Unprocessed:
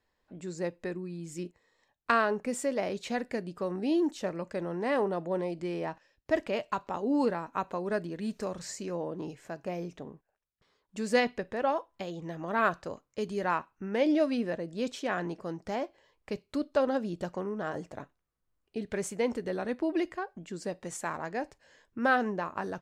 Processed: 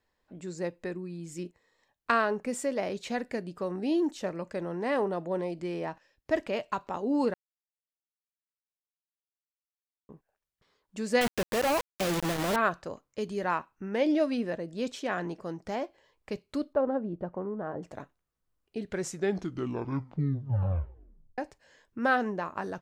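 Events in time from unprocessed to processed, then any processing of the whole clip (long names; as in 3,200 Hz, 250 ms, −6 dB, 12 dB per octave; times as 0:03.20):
0:07.34–0:10.09: silence
0:11.21–0:12.56: log-companded quantiser 2 bits
0:16.73–0:17.83: low-pass filter 1,100 Hz
0:18.83: tape stop 2.55 s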